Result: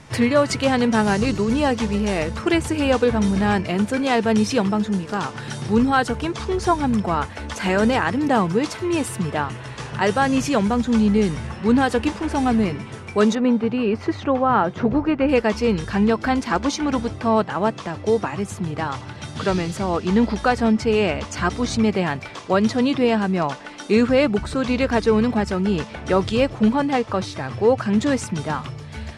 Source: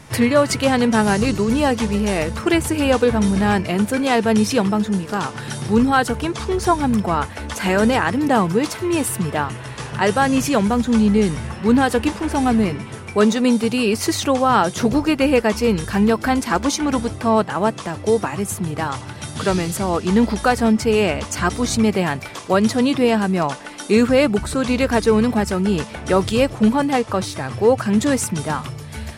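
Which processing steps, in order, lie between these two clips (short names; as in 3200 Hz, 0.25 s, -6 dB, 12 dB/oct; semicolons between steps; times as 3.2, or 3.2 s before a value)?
LPF 7600 Hz 12 dB/oct, from 13.35 s 1900 Hz, from 15.29 s 5600 Hz; gain -2 dB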